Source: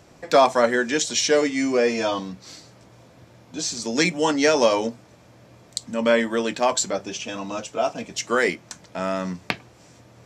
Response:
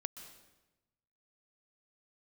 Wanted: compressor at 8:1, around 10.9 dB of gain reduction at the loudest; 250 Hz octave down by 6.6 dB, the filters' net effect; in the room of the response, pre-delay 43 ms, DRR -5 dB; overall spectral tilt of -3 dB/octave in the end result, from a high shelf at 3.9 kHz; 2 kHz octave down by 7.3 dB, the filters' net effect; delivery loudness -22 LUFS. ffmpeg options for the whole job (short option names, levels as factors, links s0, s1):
-filter_complex "[0:a]equalizer=f=250:t=o:g=-8,equalizer=f=2000:t=o:g=-8.5,highshelf=f=3900:g=-3.5,acompressor=threshold=0.0631:ratio=8,asplit=2[s0][s1];[1:a]atrim=start_sample=2205,adelay=43[s2];[s1][s2]afir=irnorm=-1:irlink=0,volume=2.24[s3];[s0][s3]amix=inputs=2:normalize=0,volume=1.33"